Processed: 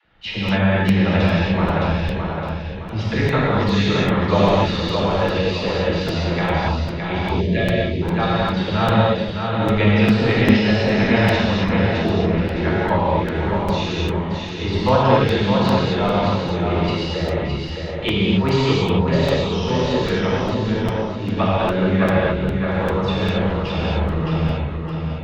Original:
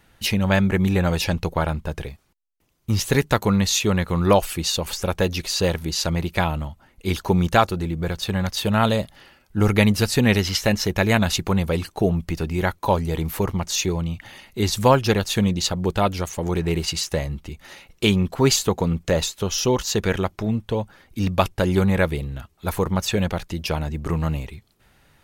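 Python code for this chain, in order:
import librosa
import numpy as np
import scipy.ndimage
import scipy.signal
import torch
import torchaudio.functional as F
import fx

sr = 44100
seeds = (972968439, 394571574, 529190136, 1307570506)

y = scipy.signal.sosfilt(scipy.signal.butter(4, 3700.0, 'lowpass', fs=sr, output='sos'), x)
y = fx.echo_feedback(y, sr, ms=614, feedback_pct=38, wet_db=-5.0)
y = fx.rev_gated(y, sr, seeds[0], gate_ms=300, shape='flat', drr_db=-7.5)
y = fx.spec_box(y, sr, start_s=7.4, length_s=0.62, low_hz=670.0, high_hz=1600.0, gain_db=-23)
y = fx.dispersion(y, sr, late='lows', ms=53.0, hz=350.0)
y = fx.buffer_crackle(y, sr, first_s=0.48, period_s=0.4, block=256, kind='repeat')
y = y * 10.0 ** (-5.5 / 20.0)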